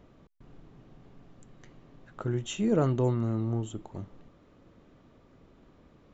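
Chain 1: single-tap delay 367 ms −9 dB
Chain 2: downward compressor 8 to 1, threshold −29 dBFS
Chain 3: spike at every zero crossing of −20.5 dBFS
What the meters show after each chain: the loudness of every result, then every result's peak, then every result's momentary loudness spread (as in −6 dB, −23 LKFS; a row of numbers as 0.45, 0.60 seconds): −29.5, −35.5, −31.0 LKFS; −14.0, −22.0, −14.5 dBFS; 14, 18, 11 LU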